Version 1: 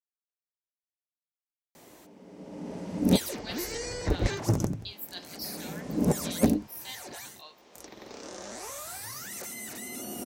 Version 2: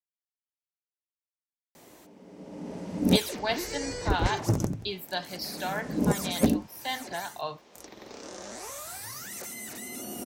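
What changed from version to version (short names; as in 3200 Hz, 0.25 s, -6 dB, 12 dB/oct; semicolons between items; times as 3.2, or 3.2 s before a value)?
speech: remove differentiator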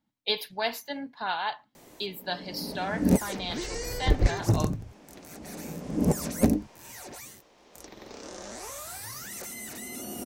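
speech: entry -2.85 s; background: remove HPF 96 Hz 6 dB/oct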